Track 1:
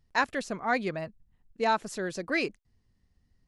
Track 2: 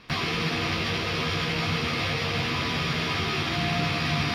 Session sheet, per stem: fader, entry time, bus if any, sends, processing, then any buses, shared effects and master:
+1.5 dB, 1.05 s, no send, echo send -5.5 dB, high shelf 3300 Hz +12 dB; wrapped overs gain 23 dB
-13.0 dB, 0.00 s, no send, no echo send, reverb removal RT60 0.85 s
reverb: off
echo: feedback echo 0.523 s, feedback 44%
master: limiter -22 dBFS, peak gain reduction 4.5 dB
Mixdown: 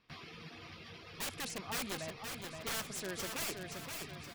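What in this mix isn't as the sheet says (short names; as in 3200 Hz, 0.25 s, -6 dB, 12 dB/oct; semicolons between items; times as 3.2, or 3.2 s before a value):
stem 1 +1.5 dB -> -10.0 dB; stem 2 -13.0 dB -> -21.5 dB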